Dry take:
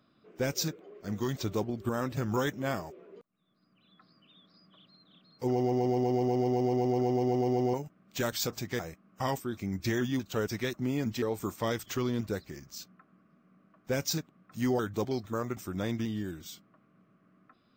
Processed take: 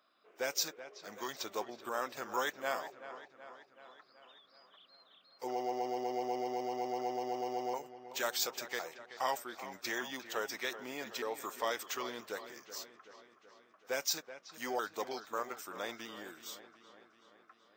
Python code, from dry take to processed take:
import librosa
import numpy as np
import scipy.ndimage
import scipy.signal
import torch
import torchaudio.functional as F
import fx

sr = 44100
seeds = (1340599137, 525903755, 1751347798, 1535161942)

p1 = scipy.signal.sosfilt(scipy.signal.cheby1(2, 1.0, 730.0, 'highpass', fs=sr, output='sos'), x)
y = p1 + fx.echo_wet_lowpass(p1, sr, ms=378, feedback_pct=60, hz=3500.0, wet_db=-13.0, dry=0)